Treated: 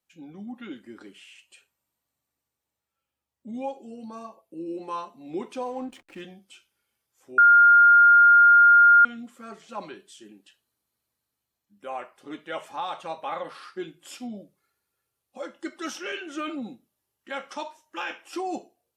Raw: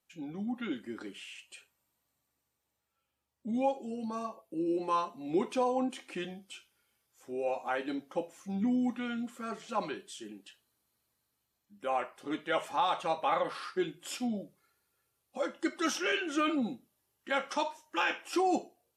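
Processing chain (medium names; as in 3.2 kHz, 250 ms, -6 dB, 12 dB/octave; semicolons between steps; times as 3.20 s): 5.63–6.21 s: hysteresis with a dead band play -45.5 dBFS; 7.38–9.05 s: bleep 1.41 kHz -8.5 dBFS; trim -2.5 dB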